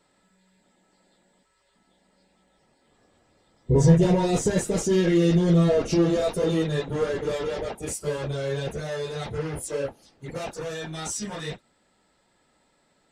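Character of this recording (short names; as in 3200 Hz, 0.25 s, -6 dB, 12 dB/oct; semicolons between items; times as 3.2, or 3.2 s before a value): noise floor -67 dBFS; spectral tilt -6.0 dB/oct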